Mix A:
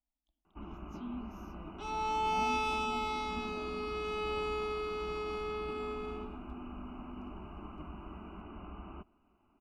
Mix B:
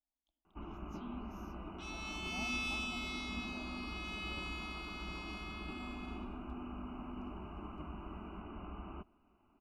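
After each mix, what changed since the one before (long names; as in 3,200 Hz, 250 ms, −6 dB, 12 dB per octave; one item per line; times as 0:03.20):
speech: add low-shelf EQ 240 Hz −10.5 dB
second sound: add inverse Chebyshev high-pass filter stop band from 510 Hz, stop band 60 dB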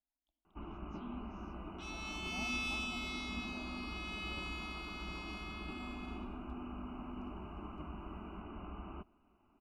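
speech: add high-frequency loss of the air 130 metres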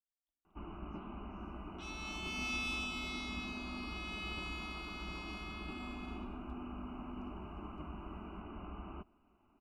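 speech −12.0 dB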